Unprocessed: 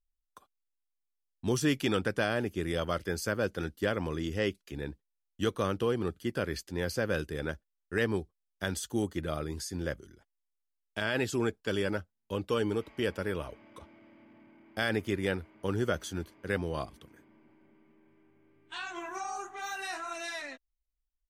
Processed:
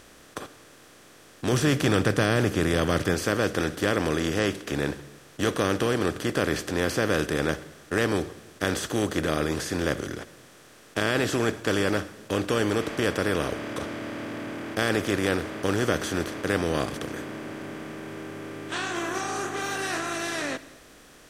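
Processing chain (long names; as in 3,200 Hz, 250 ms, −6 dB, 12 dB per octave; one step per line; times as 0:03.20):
compressor on every frequency bin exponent 0.4
0:01.52–0:03.14: parametric band 120 Hz +7 dB 1.4 octaves
on a send: convolution reverb RT60 1.1 s, pre-delay 49 ms, DRR 16 dB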